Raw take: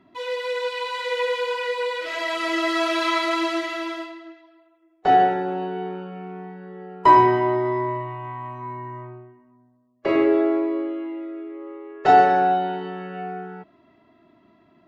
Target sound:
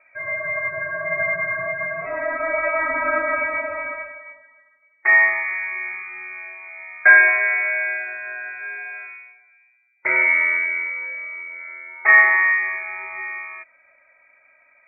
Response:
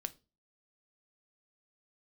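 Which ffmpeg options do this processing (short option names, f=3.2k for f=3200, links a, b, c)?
-filter_complex "[0:a]asplit=3[a][b][c];[a]afade=t=out:st=1.6:d=0.02[d];[b]asubboost=boost=10:cutoff=150,afade=t=in:st=1.6:d=0.02,afade=t=out:st=4.12:d=0.02[e];[c]afade=t=in:st=4.12:d=0.02[f];[d][e][f]amix=inputs=3:normalize=0,lowpass=f=2.2k:t=q:w=0.5098,lowpass=f=2.2k:t=q:w=0.6013,lowpass=f=2.2k:t=q:w=0.9,lowpass=f=2.2k:t=q:w=2.563,afreqshift=-2600,equalizer=f=490:w=0.33:g=9,volume=-2.5dB"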